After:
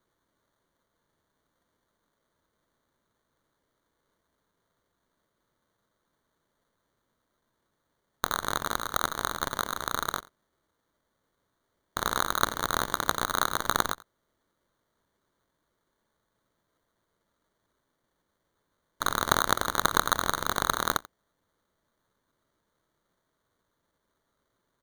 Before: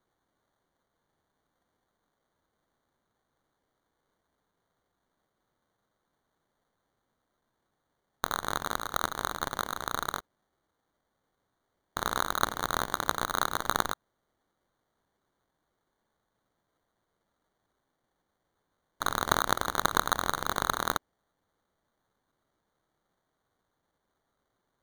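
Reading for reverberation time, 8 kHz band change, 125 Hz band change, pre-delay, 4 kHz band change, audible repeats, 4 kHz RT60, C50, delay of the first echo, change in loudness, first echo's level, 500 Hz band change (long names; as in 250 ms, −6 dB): no reverb audible, +3.5 dB, +2.0 dB, no reverb audible, +3.0 dB, 1, no reverb audible, no reverb audible, 88 ms, +2.0 dB, −21.0 dB, +1.5 dB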